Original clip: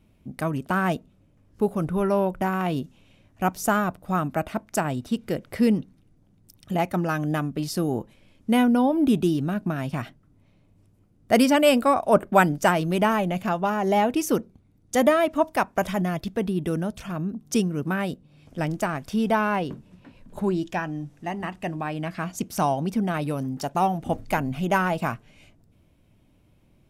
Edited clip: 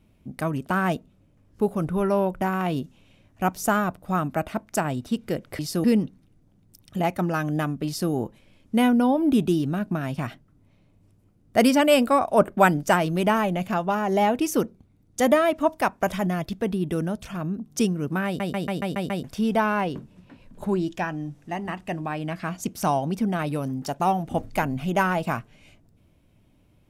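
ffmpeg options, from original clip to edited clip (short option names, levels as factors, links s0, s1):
-filter_complex "[0:a]asplit=10[s0][s1][s2][s3][s4][s5][s6][s7][s8][s9];[s0]atrim=end=5.592[s10];[s1]atrim=start=7.608:end=7.862[s11];[s2]atrim=start=5.588:end=18.152[s12];[s3]atrim=start=18.008:end=18.152[s13];[s4]atrim=start=18.008:end=18.152[s14];[s5]atrim=start=18.008:end=18.152[s15];[s6]atrim=start=18.008:end=18.152[s16];[s7]atrim=start=18.008:end=18.152[s17];[s8]atrim=start=18.008:end=18.152[s18];[s9]atrim=start=18.988[s19];[s10][s11]acrossfade=d=0.004:c1=hsin:c2=hsin[s20];[s20][s12]acrossfade=d=0.004:c1=hsin:c2=hsin[s21];[s21][s13]acrossfade=d=0.004:c1=hsin:c2=hsin[s22];[s22][s14]acrossfade=d=0.004:c1=hsin:c2=hsin[s23];[s23][s15]acrossfade=d=0.004:c1=hsin:c2=hsin[s24];[s24][s16]acrossfade=d=0.004:c1=hsin:c2=hsin[s25];[s25][s17]acrossfade=d=0.004:c1=hsin:c2=hsin[s26];[s26][s18]acrossfade=d=0.004:c1=hsin:c2=hsin[s27];[s27][s19]acrossfade=d=0.004:c1=hsin:c2=hsin"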